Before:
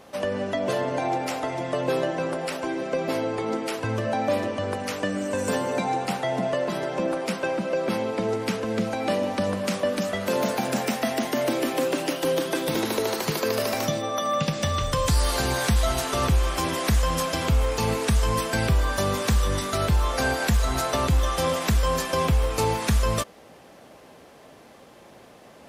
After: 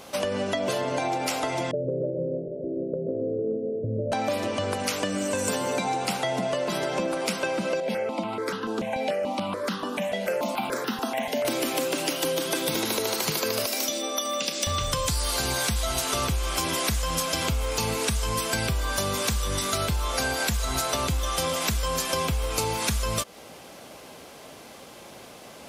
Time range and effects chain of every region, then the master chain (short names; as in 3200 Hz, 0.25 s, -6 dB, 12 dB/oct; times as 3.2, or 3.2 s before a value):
1.71–4.12 rippled Chebyshev low-pass 620 Hz, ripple 6 dB + feedback echo 0.13 s, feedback 49%, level -7 dB
7.8–11.45 three-band isolator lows -16 dB, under 170 Hz, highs -12 dB, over 3200 Hz + step phaser 6.9 Hz 330–2300 Hz
13.66–14.67 steep high-pass 250 Hz + bell 990 Hz -8.5 dB 2.4 oct + doubler 31 ms -13.5 dB
whole clip: high shelf 2200 Hz +8.5 dB; notch 1800 Hz, Q 13; compressor, threshold -26 dBFS; gain +2.5 dB